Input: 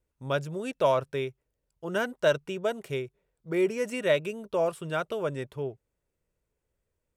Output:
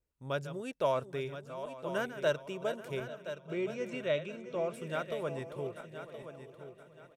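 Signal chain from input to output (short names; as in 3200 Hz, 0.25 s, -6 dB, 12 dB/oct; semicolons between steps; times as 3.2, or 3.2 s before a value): regenerating reverse delay 0.415 s, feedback 55%, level -12 dB; 3–4.74 speaker cabinet 120–6100 Hz, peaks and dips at 130 Hz +6 dB, 400 Hz -5 dB, 900 Hz -6 dB, 1800 Hz -5 dB, 4900 Hz -7 dB; on a send: feedback echo 1.022 s, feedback 28%, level -11 dB; on the sum: gain -6.5 dB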